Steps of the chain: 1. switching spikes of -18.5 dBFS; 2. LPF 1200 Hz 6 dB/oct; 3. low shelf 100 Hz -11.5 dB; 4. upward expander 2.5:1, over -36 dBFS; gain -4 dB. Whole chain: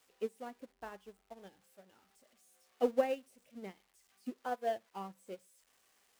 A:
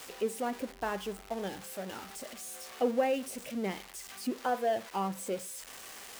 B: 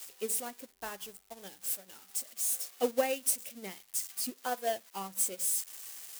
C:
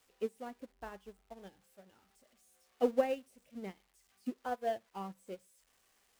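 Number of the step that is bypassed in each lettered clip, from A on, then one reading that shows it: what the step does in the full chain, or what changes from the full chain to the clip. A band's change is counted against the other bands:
4, 500 Hz band -4.5 dB; 2, 4 kHz band +12.5 dB; 3, 250 Hz band +2.5 dB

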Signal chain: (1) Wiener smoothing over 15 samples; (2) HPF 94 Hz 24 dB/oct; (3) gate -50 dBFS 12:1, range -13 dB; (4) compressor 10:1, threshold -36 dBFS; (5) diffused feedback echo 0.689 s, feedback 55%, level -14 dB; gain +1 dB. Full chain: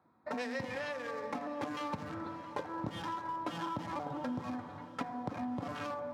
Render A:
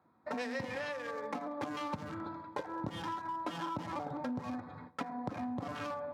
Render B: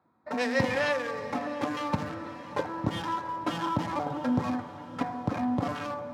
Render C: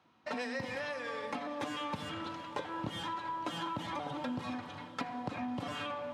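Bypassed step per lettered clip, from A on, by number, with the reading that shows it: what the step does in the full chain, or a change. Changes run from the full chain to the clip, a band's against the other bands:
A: 5, echo-to-direct -12.5 dB to none; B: 4, mean gain reduction 6.5 dB; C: 1, 4 kHz band +6.5 dB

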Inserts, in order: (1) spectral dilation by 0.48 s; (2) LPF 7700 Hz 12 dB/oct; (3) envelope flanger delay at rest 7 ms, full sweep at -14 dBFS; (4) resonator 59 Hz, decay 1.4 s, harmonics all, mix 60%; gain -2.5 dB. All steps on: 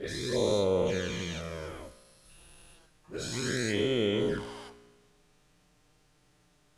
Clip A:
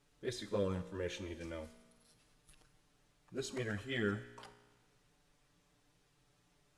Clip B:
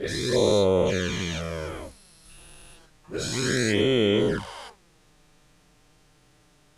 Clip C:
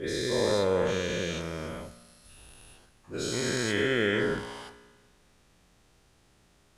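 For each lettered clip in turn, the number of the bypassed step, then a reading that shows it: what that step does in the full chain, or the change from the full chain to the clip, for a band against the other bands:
1, 8 kHz band -4.0 dB; 4, loudness change +6.5 LU; 3, 2 kHz band +4.5 dB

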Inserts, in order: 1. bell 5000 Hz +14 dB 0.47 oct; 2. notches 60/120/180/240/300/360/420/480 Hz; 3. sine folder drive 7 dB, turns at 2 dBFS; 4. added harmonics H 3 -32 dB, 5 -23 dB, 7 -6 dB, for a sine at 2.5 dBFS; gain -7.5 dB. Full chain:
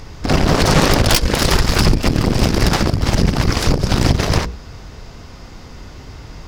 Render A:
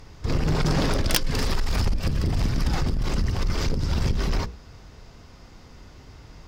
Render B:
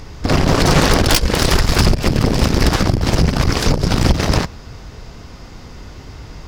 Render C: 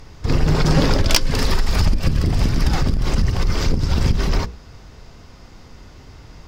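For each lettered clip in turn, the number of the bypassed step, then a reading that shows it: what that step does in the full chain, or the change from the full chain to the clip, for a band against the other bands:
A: 3, distortion -20 dB; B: 2, momentary loudness spread change -1 LU; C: 4, 125 Hz band +4.0 dB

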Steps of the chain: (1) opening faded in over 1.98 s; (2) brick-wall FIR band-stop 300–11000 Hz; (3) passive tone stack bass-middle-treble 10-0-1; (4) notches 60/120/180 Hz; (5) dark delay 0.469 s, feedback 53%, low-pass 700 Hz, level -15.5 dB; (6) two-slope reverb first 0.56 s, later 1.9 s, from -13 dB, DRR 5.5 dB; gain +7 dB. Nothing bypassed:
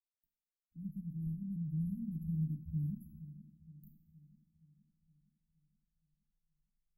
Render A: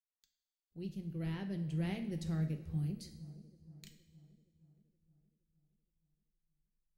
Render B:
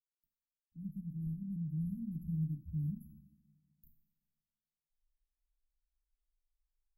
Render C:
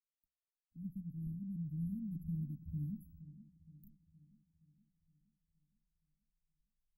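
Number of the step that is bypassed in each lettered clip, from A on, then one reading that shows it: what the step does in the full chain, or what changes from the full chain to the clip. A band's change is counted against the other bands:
2, momentary loudness spread change -1 LU; 5, momentary loudness spread change -10 LU; 6, loudness change -3.0 LU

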